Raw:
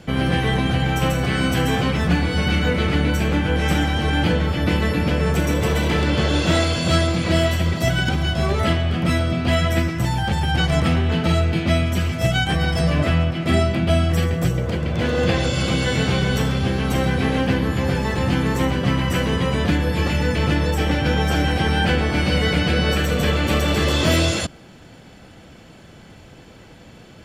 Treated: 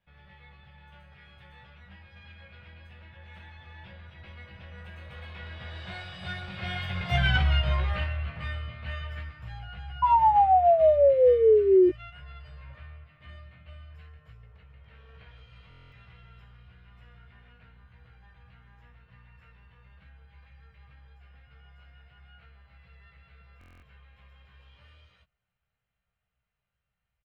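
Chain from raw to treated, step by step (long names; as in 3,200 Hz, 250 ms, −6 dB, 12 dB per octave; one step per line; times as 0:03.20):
source passing by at 0:07.35, 32 m/s, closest 8.6 metres
guitar amp tone stack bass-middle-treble 10-0-10
sound drawn into the spectrogram fall, 0:10.02–0:11.90, 350–1,000 Hz −26 dBFS
high-frequency loss of the air 460 metres
double-tracking delay 16 ms −6 dB
buffer that repeats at 0:15.69/0:23.59, samples 1,024, times 9
level +7.5 dB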